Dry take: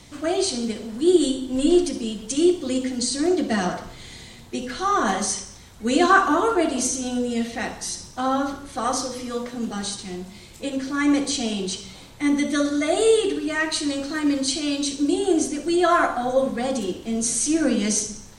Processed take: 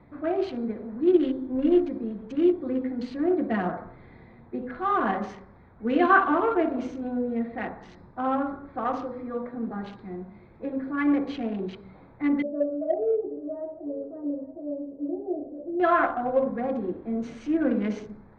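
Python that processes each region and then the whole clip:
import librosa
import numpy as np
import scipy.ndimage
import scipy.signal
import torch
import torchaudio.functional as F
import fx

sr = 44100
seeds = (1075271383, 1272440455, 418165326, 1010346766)

y = fx.chain(x, sr, fx.ladder_lowpass(hz=650.0, resonance_pct=70),
    fx.doubler(ms=14.0, db=-5),
    fx.echo_single(ms=873, db=-19.0), at=(12.42, 15.8))
y = fx.wiener(y, sr, points=15)
y = scipy.signal.sosfilt(scipy.signal.butter(4, 2700.0, 'lowpass', fs=sr, output='sos'), y)
y = fx.low_shelf(y, sr, hz=78.0, db=-8.5)
y = y * librosa.db_to_amplitude(-2.5)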